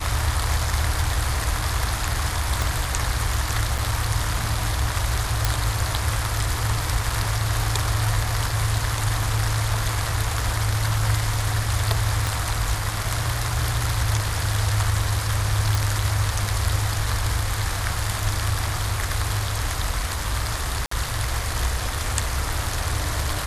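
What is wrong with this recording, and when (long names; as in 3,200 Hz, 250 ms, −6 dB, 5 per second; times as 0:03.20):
0:02.62: click
0:03.78: drop-out 4.8 ms
0:05.45: click
0:12.27: click
0:15.75: click
0:20.86–0:20.91: drop-out 54 ms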